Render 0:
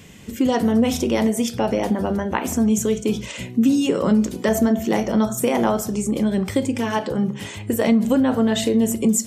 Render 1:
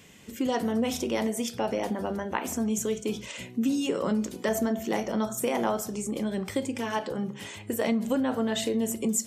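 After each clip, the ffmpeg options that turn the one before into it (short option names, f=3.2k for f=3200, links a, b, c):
-af "lowshelf=f=210:g=-9,volume=-6dB"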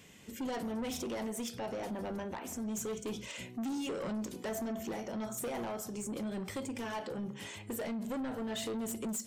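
-af "alimiter=limit=-17dB:level=0:latency=1:release=457,asoftclip=type=tanh:threshold=-29.5dB,volume=-4dB"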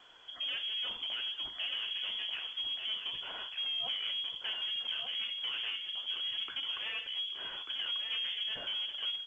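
-filter_complex "[0:a]asplit=2[a][b];[b]aecho=0:1:1190:0.531[c];[a][c]amix=inputs=2:normalize=0,lowpass=f=3k:t=q:w=0.5098,lowpass=f=3k:t=q:w=0.6013,lowpass=f=3k:t=q:w=0.9,lowpass=f=3k:t=q:w=2.563,afreqshift=-3500" -ar 16000 -c:a pcm_alaw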